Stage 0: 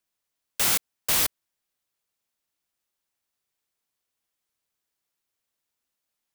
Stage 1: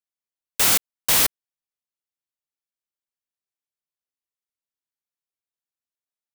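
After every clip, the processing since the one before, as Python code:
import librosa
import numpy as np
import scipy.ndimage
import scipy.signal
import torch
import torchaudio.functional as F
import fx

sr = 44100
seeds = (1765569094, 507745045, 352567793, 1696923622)

y = fx.leveller(x, sr, passes=5)
y = y * librosa.db_to_amplitude(-4.5)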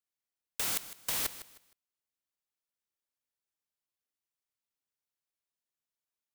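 y = fx.over_compress(x, sr, threshold_db=-24.0, ratio=-1.0)
y = fx.echo_feedback(y, sr, ms=155, feedback_pct=28, wet_db=-14.5)
y = y * librosa.db_to_amplitude(-8.0)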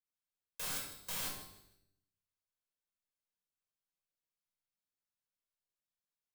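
y = fx.comb_fb(x, sr, f0_hz=97.0, decay_s=0.75, harmonics='all', damping=0.0, mix_pct=70)
y = fx.room_shoebox(y, sr, seeds[0], volume_m3=740.0, walls='furnished', distance_m=5.3)
y = y * librosa.db_to_amplitude(-4.0)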